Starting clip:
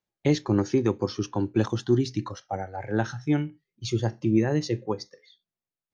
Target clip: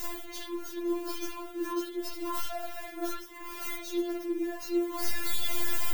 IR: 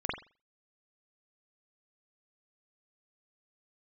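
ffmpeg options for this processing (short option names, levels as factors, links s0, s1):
-filter_complex "[0:a]aeval=exprs='val(0)+0.5*0.0355*sgn(val(0))':c=same,areverse,acompressor=threshold=0.0224:ratio=10,areverse,aemphasis=mode=production:type=50fm,aeval=exprs='clip(val(0),-1,0.0282)':c=same[s0];[1:a]atrim=start_sample=2205,afade=t=out:st=0.18:d=0.01,atrim=end_sample=8379[s1];[s0][s1]afir=irnorm=-1:irlink=0,afftfilt=real='re*4*eq(mod(b,16),0)':imag='im*4*eq(mod(b,16),0)':win_size=2048:overlap=0.75,volume=0.794"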